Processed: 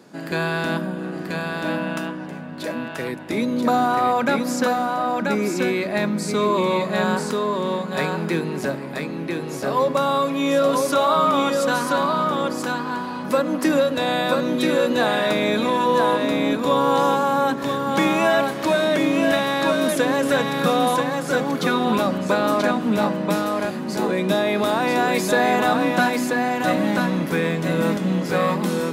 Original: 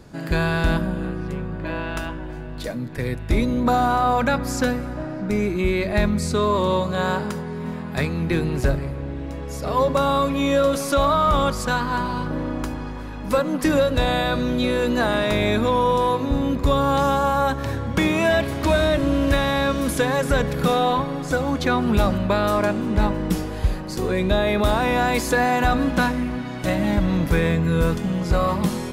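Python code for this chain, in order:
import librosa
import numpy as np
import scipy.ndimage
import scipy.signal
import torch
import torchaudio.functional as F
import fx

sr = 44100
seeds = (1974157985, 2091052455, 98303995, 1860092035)

y = scipy.signal.sosfilt(scipy.signal.butter(4, 180.0, 'highpass', fs=sr, output='sos'), x)
y = y + 10.0 ** (-3.5 / 20.0) * np.pad(y, (int(984 * sr / 1000.0), 0))[:len(y)]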